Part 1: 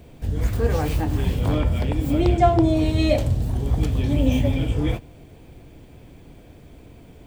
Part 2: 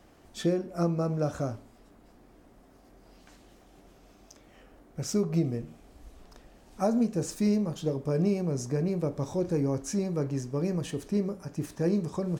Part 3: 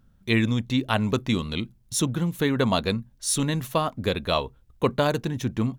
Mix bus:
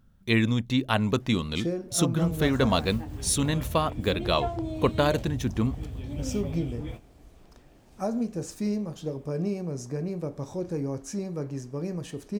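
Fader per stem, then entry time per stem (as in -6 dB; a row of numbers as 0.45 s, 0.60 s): -14.5 dB, -3.0 dB, -1.0 dB; 2.00 s, 1.20 s, 0.00 s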